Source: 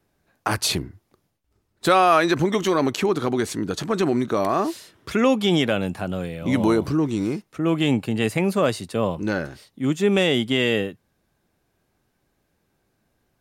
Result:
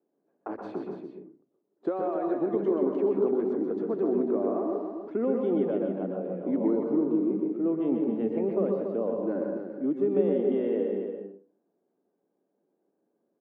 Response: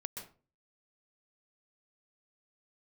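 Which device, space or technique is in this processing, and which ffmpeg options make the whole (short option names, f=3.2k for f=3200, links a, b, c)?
television next door: -filter_complex "[0:a]highpass=f=280:w=0.5412,highpass=f=280:w=1.3066,acompressor=threshold=-20dB:ratio=6,lowpass=450[a];[1:a]atrim=start_sample=2205[b];[a][b]afir=irnorm=-1:irlink=0,aecho=1:1:282:0.422,volume=3dB"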